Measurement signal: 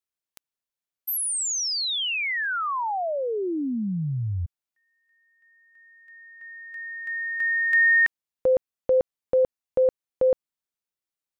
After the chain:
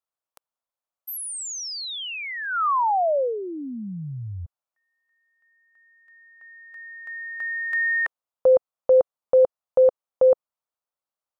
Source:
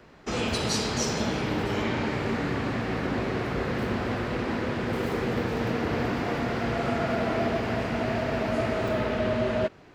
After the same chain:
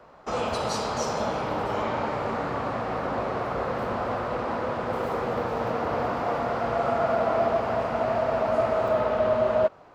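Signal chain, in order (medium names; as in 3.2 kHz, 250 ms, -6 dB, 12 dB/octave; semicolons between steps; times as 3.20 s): high-order bell 820 Hz +11.5 dB; trim -5.5 dB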